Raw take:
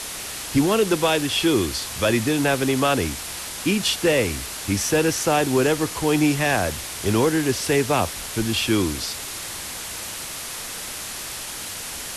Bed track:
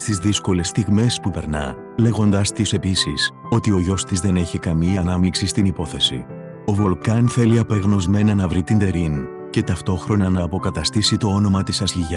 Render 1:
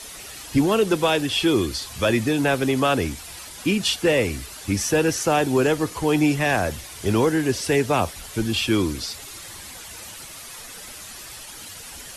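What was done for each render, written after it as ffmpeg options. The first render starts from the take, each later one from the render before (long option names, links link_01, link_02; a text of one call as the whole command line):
ffmpeg -i in.wav -af "afftdn=noise_reduction=10:noise_floor=-33" out.wav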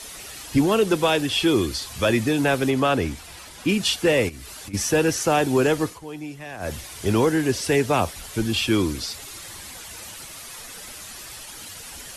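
ffmpeg -i in.wav -filter_complex "[0:a]asettb=1/sr,asplit=3[link_01][link_02][link_03];[link_01]atrim=end=2.704[link_04];[link_02]atrim=start=2.7:end=3.69,asetpts=PTS-STARTPTS,afade=type=in:duration=0.004:curve=qsin,afade=type=out:start_time=0.986:duration=0.004:curve=qsin,highshelf=frequency=4900:gain=-7[link_05];[link_03]atrim=start=3.686[link_06];[link_04][link_05]acrossfade=duration=0.004:curve1=hsin:curve2=qsin[link_07];[link_07][link_06]acrossfade=duration=0.004:curve1=qsin:curve2=hsin,asplit=3[link_08][link_09][link_10];[link_08]afade=type=out:start_time=4.28:duration=0.02[link_11];[link_09]acompressor=threshold=-34dB:ratio=16:attack=3.2:release=140:knee=1:detection=peak,afade=type=in:start_time=4.28:duration=0.02,afade=type=out:start_time=4.73:duration=0.02[link_12];[link_10]afade=type=in:start_time=4.73:duration=0.02[link_13];[link_11][link_12][link_13]amix=inputs=3:normalize=0,asplit=3[link_14][link_15][link_16];[link_14]atrim=end=5.99,asetpts=PTS-STARTPTS,afade=type=out:start_time=5.8:duration=0.19:curve=qsin:silence=0.16788[link_17];[link_15]atrim=start=5.99:end=6.59,asetpts=PTS-STARTPTS,volume=-15.5dB[link_18];[link_16]atrim=start=6.59,asetpts=PTS-STARTPTS,afade=type=in:duration=0.19:curve=qsin:silence=0.16788[link_19];[link_17][link_18][link_19]concat=n=3:v=0:a=1" out.wav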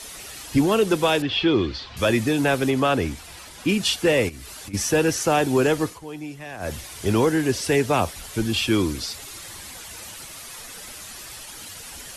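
ffmpeg -i in.wav -filter_complex "[0:a]asettb=1/sr,asplit=3[link_01][link_02][link_03];[link_01]atrim=end=1.224[link_04];[link_02]atrim=start=1.22:end=1.97,asetpts=PTS-STARTPTS,afade=type=in:duration=0.004:curve=qsin,afade=type=out:start_time=0.746:duration=0.004:curve=qsin,lowpass=frequency=4200:width=0.5412,lowpass=frequency=4200:width=1.3066[link_05];[link_03]atrim=start=1.966[link_06];[link_04][link_05]acrossfade=duration=0.004:curve1=hsin:curve2=qsin[link_07];[link_07][link_06]acrossfade=duration=0.004:curve1=qsin:curve2=hsin" out.wav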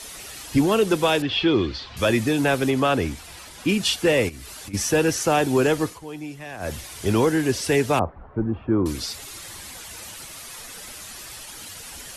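ffmpeg -i in.wav -filter_complex "[0:a]asettb=1/sr,asplit=3[link_01][link_02][link_03];[link_01]atrim=end=7.994[link_04];[link_02]atrim=start=7.99:end=8.86,asetpts=PTS-STARTPTS,afade=type=in:duration=0.004:curve=qsin,afade=type=out:start_time=0.866:duration=0.004:curve=qsin,lowpass=frequency=1200:width=0.5412,lowpass=frequency=1200:width=1.3066[link_05];[link_03]atrim=start=8.856[link_06];[link_04][link_05]acrossfade=duration=0.004:curve1=hsin:curve2=qsin[link_07];[link_07][link_06]acrossfade=duration=0.004:curve1=qsin:curve2=hsin" out.wav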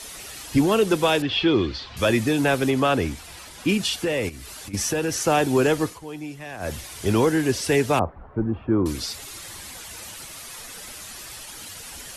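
ffmpeg -i in.wav -filter_complex "[0:a]asettb=1/sr,asplit=3[link_01][link_02][link_03];[link_01]atrim=end=3.774[link_04];[link_02]atrim=start=3.77:end=5.19,asetpts=PTS-STARTPTS,afade=type=in:duration=0.004:curve=qsin,afade=type=out:start_time=1.416:duration=0.004:curve=qsin,acompressor=threshold=-20dB:ratio=5:attack=3.2:release=140:knee=1:detection=peak[link_05];[link_03]atrim=start=5.186[link_06];[link_04][link_05]acrossfade=duration=0.004:curve1=hsin:curve2=qsin[link_07];[link_07][link_06]acrossfade=duration=0.004:curve1=qsin:curve2=hsin" out.wav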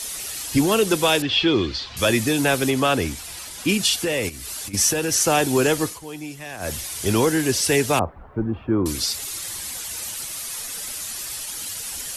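ffmpeg -i in.wav -af "highshelf=frequency=3800:gain=10.5" out.wav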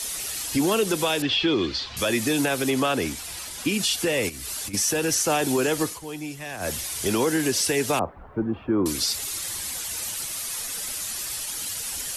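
ffmpeg -i in.wav -filter_complex "[0:a]acrossover=split=160[link_01][link_02];[link_01]acompressor=threshold=-39dB:ratio=6[link_03];[link_03][link_02]amix=inputs=2:normalize=0,alimiter=limit=-13.5dB:level=0:latency=1:release=86" out.wav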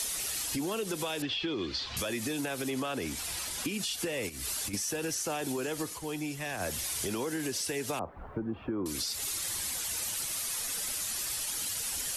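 ffmpeg -i in.wav -af "alimiter=limit=-19dB:level=0:latency=1:release=216,acompressor=threshold=-32dB:ratio=3" out.wav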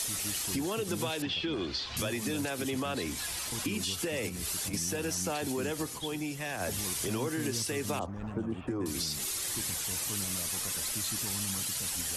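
ffmpeg -i in.wav -i bed.wav -filter_complex "[1:a]volume=-24dB[link_01];[0:a][link_01]amix=inputs=2:normalize=0" out.wav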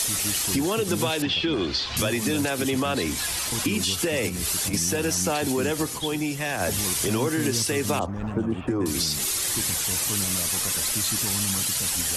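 ffmpeg -i in.wav -af "volume=8.5dB" out.wav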